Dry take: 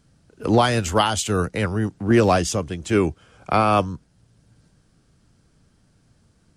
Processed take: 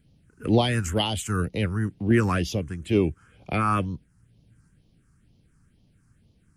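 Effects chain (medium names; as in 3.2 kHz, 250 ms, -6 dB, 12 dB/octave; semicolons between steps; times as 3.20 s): phase shifter stages 4, 2.1 Hz, lowest notch 570–1500 Hz; trim -2 dB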